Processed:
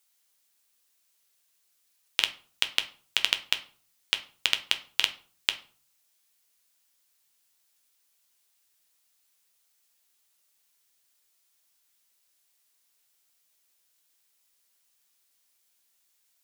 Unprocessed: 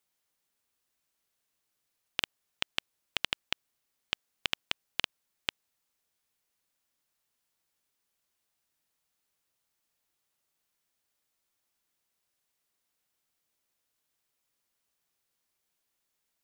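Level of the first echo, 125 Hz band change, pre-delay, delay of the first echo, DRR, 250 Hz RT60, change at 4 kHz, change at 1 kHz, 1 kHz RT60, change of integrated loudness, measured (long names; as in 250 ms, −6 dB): no echo audible, can't be measured, 8 ms, no echo audible, 7.0 dB, 0.55 s, +8.5 dB, +3.0 dB, 0.45 s, +7.5 dB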